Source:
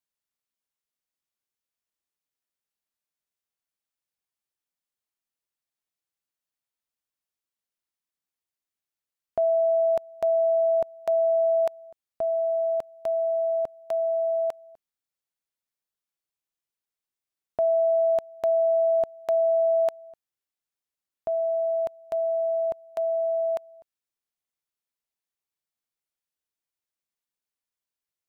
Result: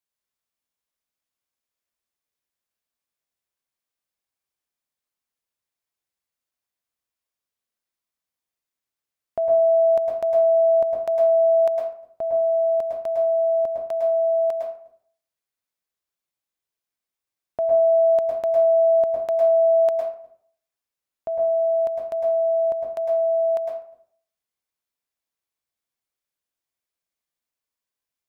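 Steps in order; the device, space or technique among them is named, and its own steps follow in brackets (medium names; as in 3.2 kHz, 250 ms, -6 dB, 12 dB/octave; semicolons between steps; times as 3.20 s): bathroom (reverberation RT60 0.55 s, pre-delay 102 ms, DRR -0.5 dB)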